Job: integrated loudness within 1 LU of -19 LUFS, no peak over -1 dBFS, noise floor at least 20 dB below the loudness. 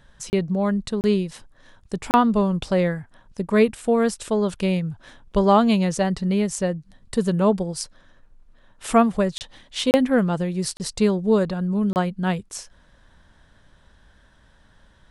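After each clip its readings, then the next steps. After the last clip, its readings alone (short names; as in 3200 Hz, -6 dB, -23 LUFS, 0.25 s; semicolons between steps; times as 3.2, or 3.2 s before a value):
dropouts 7; longest dropout 29 ms; loudness -22.0 LUFS; peak -5.0 dBFS; loudness target -19.0 LUFS
-> interpolate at 0.3/1.01/2.11/9.38/9.91/10.77/11.93, 29 ms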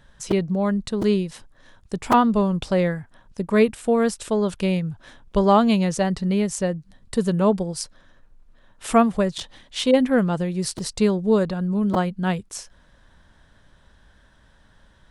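dropouts 0; loudness -22.0 LUFS; peak -5.0 dBFS; loudness target -19.0 LUFS
-> gain +3 dB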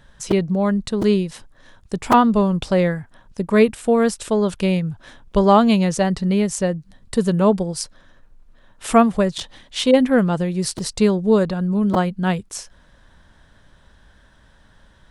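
loudness -19.0 LUFS; peak -2.0 dBFS; noise floor -53 dBFS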